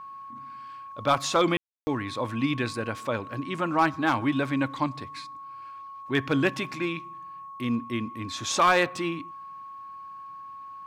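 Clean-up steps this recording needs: clip repair -13 dBFS; notch 1100 Hz, Q 30; room tone fill 1.57–1.87

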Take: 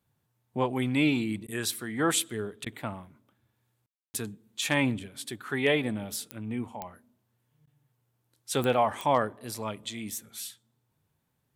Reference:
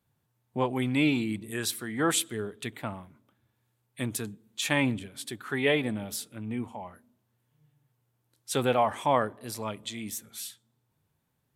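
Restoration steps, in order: clip repair -12 dBFS; de-click; room tone fill 3.86–4.14; interpolate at 1.47/2.65/7.66, 11 ms

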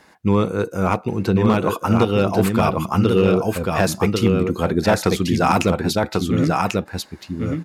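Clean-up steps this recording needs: clip repair -6.5 dBFS; inverse comb 1.092 s -3.5 dB

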